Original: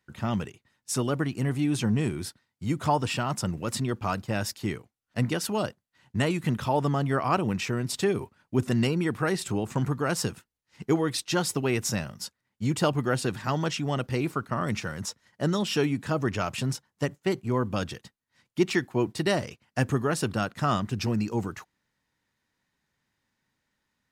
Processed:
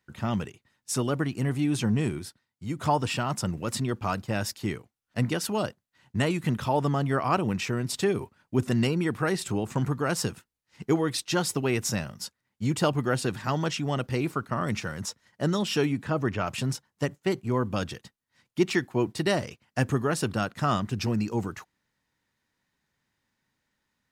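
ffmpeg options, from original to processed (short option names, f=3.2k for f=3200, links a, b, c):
-filter_complex "[0:a]asettb=1/sr,asplit=3[a][b][c];[a]atrim=end=15.924[d];[b]atrim=start=15.92:end=16.47,asetpts=PTS-STARTPTS,afade=t=in:d=0.004:c=qsin,afade=t=out:st=0.546:d=0.004:c=qsin,acrossover=split=3300[e][f];[f]acompressor=threshold=-54dB:ratio=4:attack=1:release=60[g];[e][g]amix=inputs=2:normalize=0[h];[c]atrim=start=16.466[i];[d][h]acrossfade=d=0.004:c1=hsin:c2=qsin[j];[j][i]acrossfade=d=0.004:c1=qsin:c2=hsin,asplit=3[k][l][m];[k]atrim=end=2.192[n];[l]atrim=start=2.188:end=2.792,asetpts=PTS-STARTPTS,volume=-4.5dB[o];[m]atrim=start=2.788[p];[n][o]acrossfade=d=0.004:c1=hsin:c2=hsin[q];[q][p]acrossfade=d=0.004:c1=hsin:c2=hsin"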